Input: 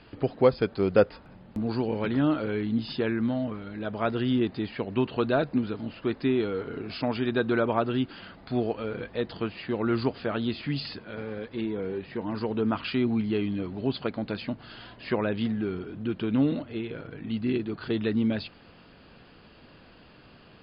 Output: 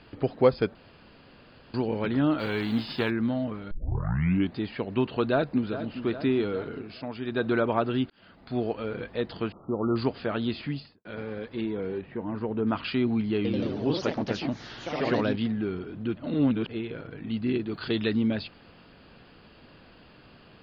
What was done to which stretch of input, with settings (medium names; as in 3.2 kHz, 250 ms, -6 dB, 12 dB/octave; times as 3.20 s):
0.75–1.74 s: room tone
2.38–3.09 s: formants flattened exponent 0.6
3.71 s: tape start 0.84 s
5.30–5.97 s: echo throw 410 ms, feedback 65%, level -11.5 dB
6.66–7.48 s: dip -8 dB, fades 0.29 s
8.10–8.88 s: fade in equal-power
9.52–9.96 s: brick-wall FIR low-pass 1.4 kHz
10.57–11.05 s: studio fade out
12.01–12.67 s: distance through air 490 m
13.36–15.50 s: ever faster or slower copies 87 ms, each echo +2 st, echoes 3
16.17–16.69 s: reverse
17.71–18.17 s: treble shelf 2.9 kHz +11 dB